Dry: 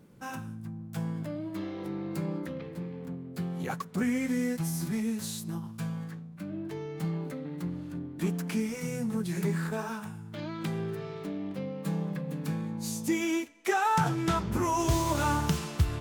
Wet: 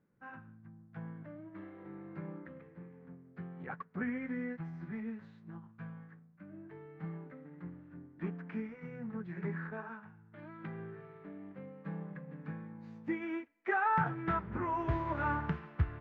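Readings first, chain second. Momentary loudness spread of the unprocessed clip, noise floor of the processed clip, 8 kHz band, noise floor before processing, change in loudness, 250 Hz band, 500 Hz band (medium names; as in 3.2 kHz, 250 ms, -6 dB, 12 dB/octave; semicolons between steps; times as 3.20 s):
12 LU, -61 dBFS, under -40 dB, -44 dBFS, -7.0 dB, -9.5 dB, -9.0 dB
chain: four-pole ladder low-pass 2.1 kHz, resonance 45%; upward expansion 1.5:1, over -57 dBFS; trim +4 dB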